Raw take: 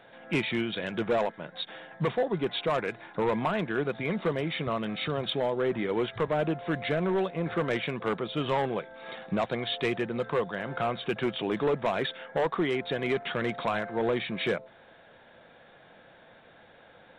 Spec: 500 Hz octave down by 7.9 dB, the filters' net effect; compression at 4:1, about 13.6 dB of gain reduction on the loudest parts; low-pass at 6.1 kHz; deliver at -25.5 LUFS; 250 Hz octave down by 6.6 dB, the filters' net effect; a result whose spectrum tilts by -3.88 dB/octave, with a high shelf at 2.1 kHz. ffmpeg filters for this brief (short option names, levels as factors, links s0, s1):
-af "lowpass=6100,equalizer=f=250:t=o:g=-6.5,equalizer=f=500:t=o:g=-7.5,highshelf=f=2100:g=-8.5,acompressor=threshold=0.00501:ratio=4,volume=12.6"